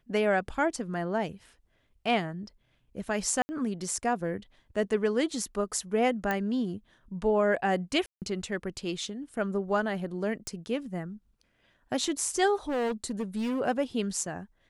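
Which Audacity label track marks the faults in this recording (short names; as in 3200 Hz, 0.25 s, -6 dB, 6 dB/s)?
3.420000	3.490000	gap 70 ms
6.310000	6.310000	pop -16 dBFS
8.060000	8.220000	gap 0.158 s
10.470000	10.470000	pop
12.690000	13.610000	clipped -26.5 dBFS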